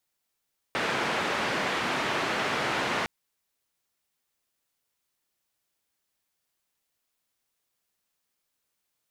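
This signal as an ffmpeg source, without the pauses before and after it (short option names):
-f lavfi -i "anoisesrc=c=white:d=2.31:r=44100:seed=1,highpass=f=150,lowpass=f=2000,volume=-13.4dB"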